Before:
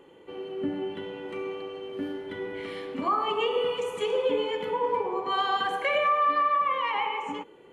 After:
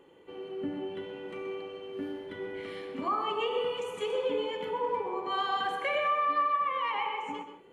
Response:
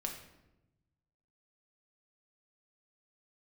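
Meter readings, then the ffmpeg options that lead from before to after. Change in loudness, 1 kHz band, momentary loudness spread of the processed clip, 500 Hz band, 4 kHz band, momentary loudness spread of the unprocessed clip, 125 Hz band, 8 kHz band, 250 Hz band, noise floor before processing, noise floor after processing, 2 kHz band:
−4.0 dB, −4.0 dB, 13 LU, −4.5 dB, −4.0 dB, 13 LU, −4.0 dB, can't be measured, −4.0 dB, −52 dBFS, −55 dBFS, −4.0 dB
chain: -filter_complex "[0:a]asplit=2[link_01][link_02];[1:a]atrim=start_sample=2205,atrim=end_sample=3528,adelay=127[link_03];[link_02][link_03]afir=irnorm=-1:irlink=0,volume=-9.5dB[link_04];[link_01][link_04]amix=inputs=2:normalize=0,volume=-4.5dB"

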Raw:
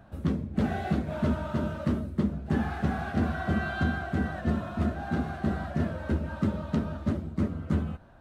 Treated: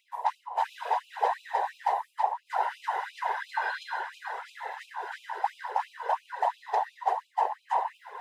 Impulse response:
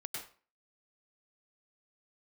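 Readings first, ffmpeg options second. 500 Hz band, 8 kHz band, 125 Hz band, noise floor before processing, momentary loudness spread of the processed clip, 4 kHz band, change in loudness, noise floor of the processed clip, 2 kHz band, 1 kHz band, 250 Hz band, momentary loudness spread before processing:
−2.5 dB, can't be measured, below −40 dB, −43 dBFS, 9 LU, +1.5 dB, −1.5 dB, −67 dBFS, +0.5 dB, +11.0 dB, below −35 dB, 3 LU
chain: -filter_complex "[0:a]afftfilt=real='real(if(between(b,1,1008),(2*floor((b-1)/48)+1)*48-b,b),0)':imag='imag(if(between(b,1,1008),(2*floor((b-1)/48)+1)*48-b,b),0)*if(between(b,1,1008),-1,1)':win_size=2048:overlap=0.75,acrossover=split=160[link_01][link_02];[link_02]acontrast=79[link_03];[link_01][link_03]amix=inputs=2:normalize=0,equalizer=frequency=150:width=1.5:gain=12.5,areverse,acompressor=mode=upward:threshold=-23dB:ratio=2.5,areverse,afftfilt=real='hypot(re,im)*cos(2*PI*random(0))':imag='hypot(re,im)*sin(2*PI*random(1))':win_size=512:overlap=0.75,afftfilt=real='re*gte(b*sr/1024,380*pow(2400/380,0.5+0.5*sin(2*PI*2.9*pts/sr)))':imag='im*gte(b*sr/1024,380*pow(2400/380,0.5+0.5*sin(2*PI*2.9*pts/sr)))':win_size=1024:overlap=0.75"

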